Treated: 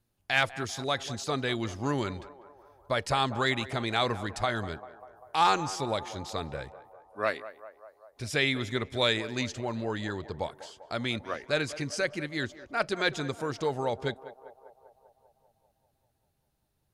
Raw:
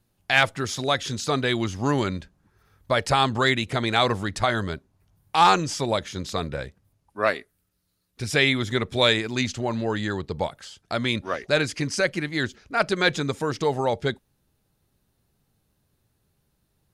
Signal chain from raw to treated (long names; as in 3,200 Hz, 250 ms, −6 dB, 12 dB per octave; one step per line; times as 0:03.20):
parametric band 180 Hz −5.5 dB 0.21 octaves
feedback echo with a band-pass in the loop 197 ms, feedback 70%, band-pass 730 Hz, level −13.5 dB
level −6.5 dB